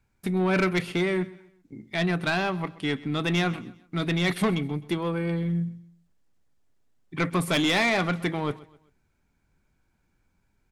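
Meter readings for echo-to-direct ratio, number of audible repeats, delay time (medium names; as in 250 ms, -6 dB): -19.5 dB, 2, 129 ms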